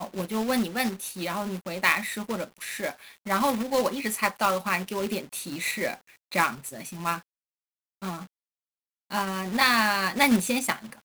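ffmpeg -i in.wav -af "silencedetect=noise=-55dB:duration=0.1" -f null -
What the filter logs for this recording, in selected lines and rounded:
silence_start: 6.17
silence_end: 6.31 | silence_duration: 0.14
silence_start: 7.23
silence_end: 8.02 | silence_duration: 0.79
silence_start: 8.27
silence_end: 9.10 | silence_duration: 0.83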